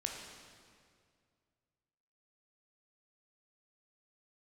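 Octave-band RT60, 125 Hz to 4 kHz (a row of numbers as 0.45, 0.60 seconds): 2.7, 2.4, 2.3, 2.0, 1.9, 1.7 seconds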